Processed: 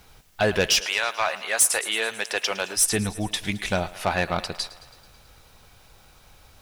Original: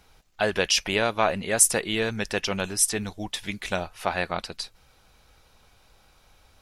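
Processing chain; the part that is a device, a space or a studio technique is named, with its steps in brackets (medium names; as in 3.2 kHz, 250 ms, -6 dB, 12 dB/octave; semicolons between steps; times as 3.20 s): 0.79–2.76 s: high-pass 1.2 kHz -> 480 Hz 12 dB/octave; thinning echo 109 ms, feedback 65%, high-pass 230 Hz, level -18.5 dB; open-reel tape (saturation -17 dBFS, distortion -11 dB; peaking EQ 120 Hz +4.5 dB 0.84 oct; white noise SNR 36 dB); trim +4.5 dB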